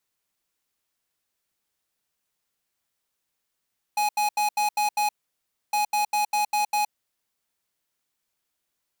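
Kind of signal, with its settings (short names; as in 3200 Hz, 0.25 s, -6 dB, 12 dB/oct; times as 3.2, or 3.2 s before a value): beep pattern square 836 Hz, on 0.12 s, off 0.08 s, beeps 6, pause 0.64 s, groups 2, -23 dBFS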